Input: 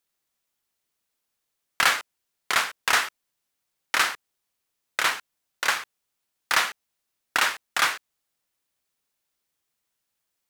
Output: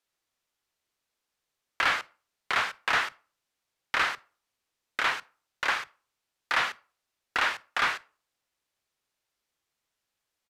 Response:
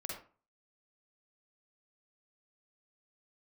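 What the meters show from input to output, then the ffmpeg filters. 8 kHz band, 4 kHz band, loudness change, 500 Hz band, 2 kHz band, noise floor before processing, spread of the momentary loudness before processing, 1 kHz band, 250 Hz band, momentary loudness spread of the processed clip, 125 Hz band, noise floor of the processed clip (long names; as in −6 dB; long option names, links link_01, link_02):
−13.5 dB, −6.0 dB, −4.0 dB, −2.5 dB, −3.0 dB, −80 dBFS, 10 LU, −2.5 dB, −2.0 dB, 11 LU, can't be measured, −85 dBFS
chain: -filter_complex "[0:a]equalizer=frequency=12000:width_type=o:width=1.1:gain=-8.5,acrossover=split=200[link_01][link_02];[link_01]adelay=30[link_03];[link_03][link_02]amix=inputs=2:normalize=0,asoftclip=type=tanh:threshold=-18dB,asplit=2[link_04][link_05];[1:a]atrim=start_sample=2205[link_06];[link_05][link_06]afir=irnorm=-1:irlink=0,volume=-20dB[link_07];[link_04][link_07]amix=inputs=2:normalize=0,acrossover=split=4000[link_08][link_09];[link_09]acompressor=threshold=-43dB:ratio=4:attack=1:release=60[link_10];[link_08][link_10]amix=inputs=2:normalize=0,aresample=32000,aresample=44100"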